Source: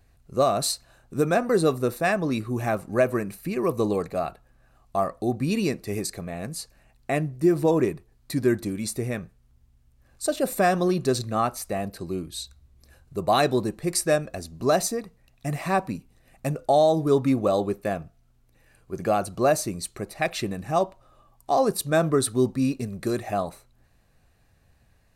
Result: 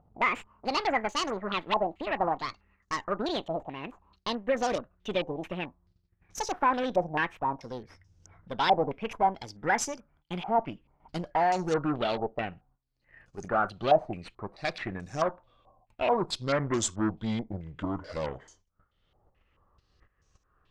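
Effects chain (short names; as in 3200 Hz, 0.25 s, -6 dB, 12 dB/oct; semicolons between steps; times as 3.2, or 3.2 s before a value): speed glide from 178% -> 65%; gate -56 dBFS, range -20 dB; upward compressor, threshold -40 dBFS; added harmonics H 8 -20 dB, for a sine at -10.5 dBFS; stepped low-pass 4.6 Hz 770–6200 Hz; gain -8 dB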